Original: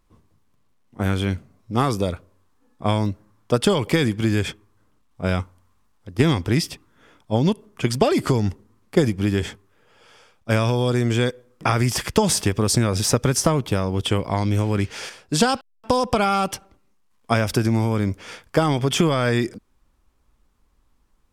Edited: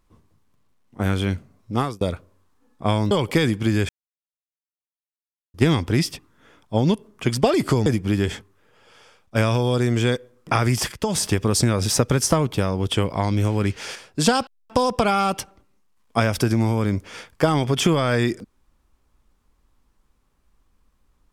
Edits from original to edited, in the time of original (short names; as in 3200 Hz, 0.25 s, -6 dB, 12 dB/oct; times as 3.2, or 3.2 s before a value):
1.74–2.01 fade out
3.11–3.69 cut
4.47–6.12 mute
8.44–9 cut
12.06–12.46 fade in, from -12.5 dB